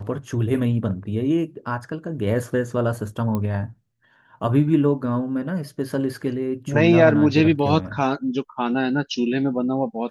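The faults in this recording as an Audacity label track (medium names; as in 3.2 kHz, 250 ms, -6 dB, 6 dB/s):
3.350000	3.350000	pop -14 dBFS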